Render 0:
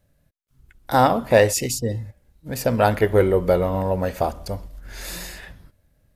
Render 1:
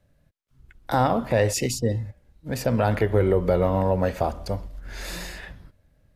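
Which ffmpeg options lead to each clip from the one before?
-filter_complex "[0:a]highshelf=f=7700:g=-11,acrossover=split=160[s0][s1];[s1]alimiter=limit=0.237:level=0:latency=1:release=119[s2];[s0][s2]amix=inputs=2:normalize=0,volume=1.12"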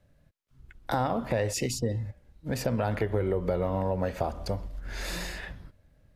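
-af "acompressor=threshold=0.0447:ratio=2.5,highshelf=f=9100:g=-4"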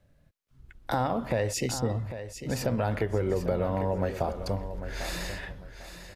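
-af "aecho=1:1:798|1596|2394:0.282|0.0705|0.0176"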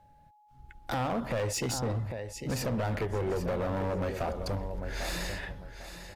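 -af "volume=22.4,asoftclip=hard,volume=0.0447,aeval=exprs='val(0)+0.00112*sin(2*PI*840*n/s)':c=same"

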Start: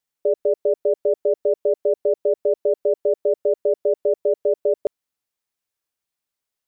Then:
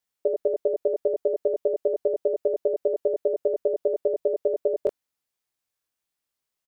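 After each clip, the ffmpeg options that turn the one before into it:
-filter_complex "[0:a]asplit=2[s0][s1];[s1]adelay=23,volume=0.631[s2];[s0][s2]amix=inputs=2:normalize=0,volume=0.841"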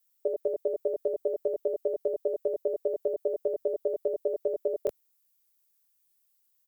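-filter_complex "[0:a]aemphasis=mode=production:type=75fm,acrossover=split=110[s0][s1];[s0]acrusher=samples=17:mix=1:aa=0.000001[s2];[s2][s1]amix=inputs=2:normalize=0,volume=0.596"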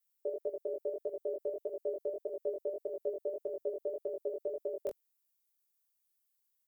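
-af "flanger=delay=17.5:depth=3.3:speed=1.7,volume=0.596"

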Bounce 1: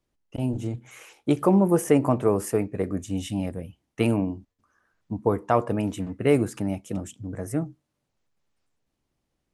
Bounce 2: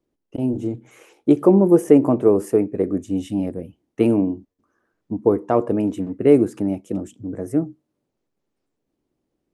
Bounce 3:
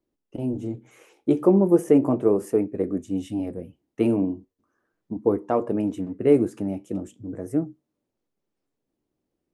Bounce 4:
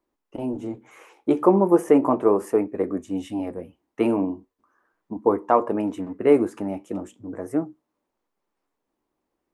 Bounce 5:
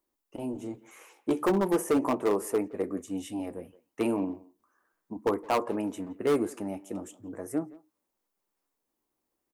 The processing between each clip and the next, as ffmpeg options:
-af "equalizer=f=340:t=o:w=1.9:g=14,volume=0.562"
-af "flanger=delay=3:depth=9.2:regen=-70:speed=0.37:shape=triangular"
-af "equalizer=f=125:t=o:w=1:g=-8,equalizer=f=1000:t=o:w=1:g=11,equalizer=f=2000:t=o:w=1:g=4"
-filter_complex "[0:a]asoftclip=type=hard:threshold=0.224,crystalizer=i=2.5:c=0,asplit=2[s0][s1];[s1]adelay=170,highpass=300,lowpass=3400,asoftclip=type=hard:threshold=0.133,volume=0.112[s2];[s0][s2]amix=inputs=2:normalize=0,volume=0.473"

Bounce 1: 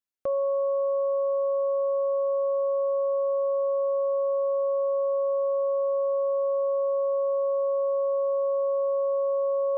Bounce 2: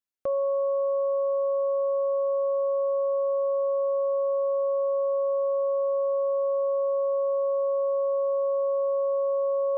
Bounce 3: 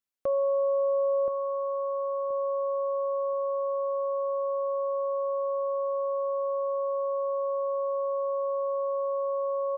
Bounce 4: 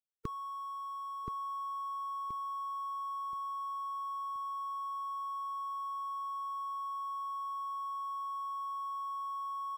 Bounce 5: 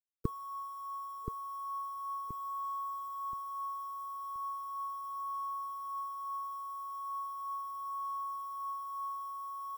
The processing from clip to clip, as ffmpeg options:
-af anull
-filter_complex "[0:a]asplit=2[s0][s1];[s1]adelay=1026,lowpass=f=880:p=1,volume=0.596,asplit=2[s2][s3];[s3]adelay=1026,lowpass=f=880:p=1,volume=0.34,asplit=2[s4][s5];[s5]adelay=1026,lowpass=f=880:p=1,volume=0.34,asplit=2[s6][s7];[s7]adelay=1026,lowpass=f=880:p=1,volume=0.34[s8];[s0][s2][s4][s6][s8]amix=inputs=5:normalize=0"
-af "afftfilt=real='re*(1-between(b*sr/4096,460,920))':imag='im*(1-between(b*sr/4096,460,920))':win_size=4096:overlap=0.75,bass=f=250:g=14,treble=f=4000:g=14,aeval=exprs='sgn(val(0))*max(abs(val(0))-0.00133,0)':c=same"
-af "acrusher=bits=9:mix=0:aa=0.000001,equalizer=f=3000:w=0.42:g=-13.5,aphaser=in_gain=1:out_gain=1:delay=2.3:decay=0.24:speed=0.37:type=sinusoidal,volume=1.88"

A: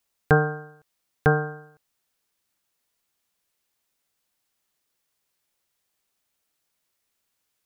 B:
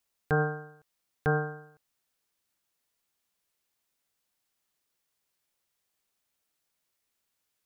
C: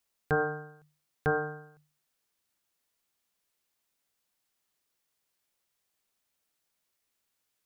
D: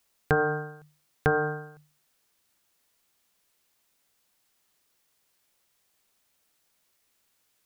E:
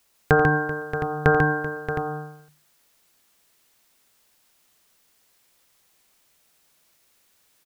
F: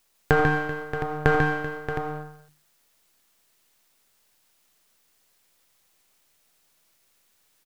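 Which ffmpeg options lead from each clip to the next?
-af "alimiter=limit=0.251:level=0:latency=1:release=47,volume=0.668"
-af "bandreject=f=50:t=h:w=6,bandreject=f=100:t=h:w=6,bandreject=f=150:t=h:w=6"
-af "acompressor=threshold=0.0398:ratio=6,volume=2.66"
-af "aecho=1:1:87|143|386|627|714:0.2|0.596|0.158|0.282|0.299,volume=2"
-af "aeval=exprs='if(lt(val(0),0),0.447*val(0),val(0))':c=same"

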